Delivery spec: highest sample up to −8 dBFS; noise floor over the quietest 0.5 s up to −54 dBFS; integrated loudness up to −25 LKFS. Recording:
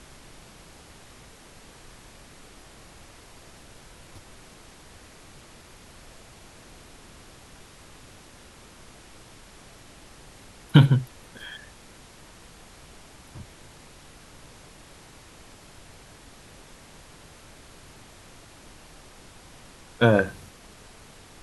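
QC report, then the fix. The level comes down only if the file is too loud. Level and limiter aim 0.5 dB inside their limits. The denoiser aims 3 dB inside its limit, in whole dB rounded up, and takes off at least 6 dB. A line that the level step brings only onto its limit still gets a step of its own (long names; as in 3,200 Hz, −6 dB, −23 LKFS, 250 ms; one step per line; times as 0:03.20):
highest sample −2.0 dBFS: out of spec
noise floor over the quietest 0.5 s −49 dBFS: out of spec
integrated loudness −22.5 LKFS: out of spec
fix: broadband denoise 6 dB, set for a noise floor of −49 dBFS
level −3 dB
brickwall limiter −8.5 dBFS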